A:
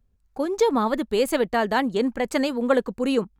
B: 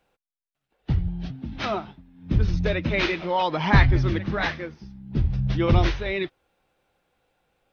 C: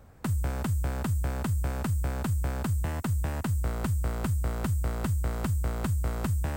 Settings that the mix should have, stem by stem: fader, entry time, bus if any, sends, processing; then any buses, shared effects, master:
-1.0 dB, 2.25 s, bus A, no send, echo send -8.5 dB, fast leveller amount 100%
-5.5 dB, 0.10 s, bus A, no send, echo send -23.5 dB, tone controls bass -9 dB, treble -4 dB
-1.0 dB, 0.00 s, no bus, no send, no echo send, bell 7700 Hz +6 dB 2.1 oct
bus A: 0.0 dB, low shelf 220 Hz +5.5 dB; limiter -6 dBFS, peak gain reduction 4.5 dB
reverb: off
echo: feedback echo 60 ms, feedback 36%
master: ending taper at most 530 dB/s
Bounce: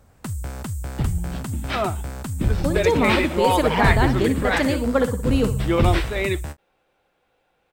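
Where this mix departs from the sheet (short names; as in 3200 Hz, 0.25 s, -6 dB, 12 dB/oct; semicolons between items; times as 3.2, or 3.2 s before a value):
stem A: missing fast leveller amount 100%; stem B -5.5 dB -> +3.5 dB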